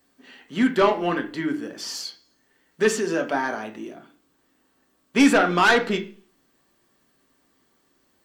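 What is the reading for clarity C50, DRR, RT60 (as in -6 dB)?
13.0 dB, 3.5 dB, 0.45 s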